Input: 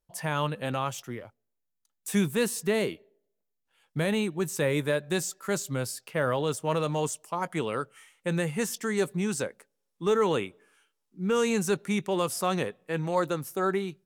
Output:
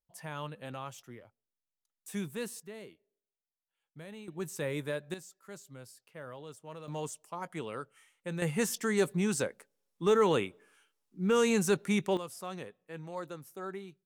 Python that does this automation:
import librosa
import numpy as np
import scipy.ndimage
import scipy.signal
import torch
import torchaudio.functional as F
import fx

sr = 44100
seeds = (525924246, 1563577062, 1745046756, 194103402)

y = fx.gain(x, sr, db=fx.steps((0.0, -11.5), (2.6, -20.0), (4.28, -8.5), (5.14, -18.5), (6.88, -9.0), (8.42, -1.0), (12.17, -13.5)))